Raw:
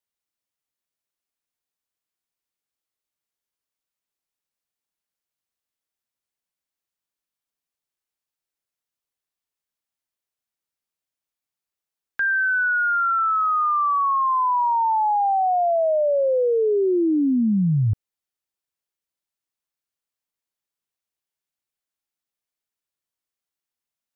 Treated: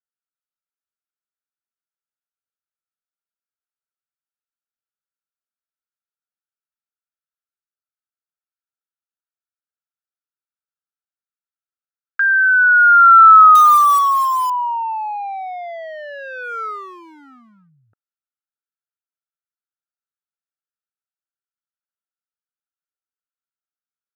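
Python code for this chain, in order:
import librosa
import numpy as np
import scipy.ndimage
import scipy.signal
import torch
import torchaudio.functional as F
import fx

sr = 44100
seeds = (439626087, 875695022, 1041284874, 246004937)

y = fx.wiener(x, sr, points=41)
y = fx.highpass_res(y, sr, hz=1300.0, q=7.1)
y = fx.quant_float(y, sr, bits=2, at=(13.55, 14.5))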